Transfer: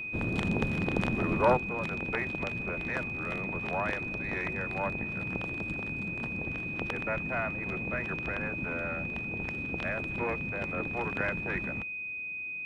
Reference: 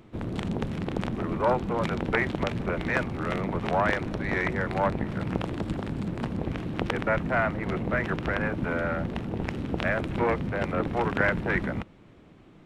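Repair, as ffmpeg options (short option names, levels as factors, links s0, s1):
-af "bandreject=f=2500:w=30,asetnsamples=n=441:p=0,asendcmd='1.57 volume volume 8dB',volume=1"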